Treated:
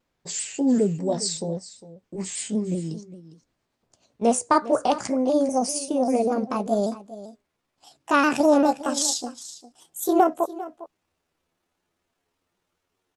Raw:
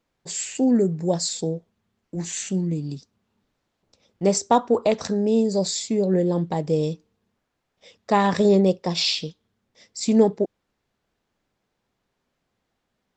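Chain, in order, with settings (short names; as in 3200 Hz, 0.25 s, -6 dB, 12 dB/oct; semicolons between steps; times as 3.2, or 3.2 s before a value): gliding pitch shift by +10.5 st starting unshifted; echo 0.404 s -16 dB; shaped vibrato saw down 5.1 Hz, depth 100 cents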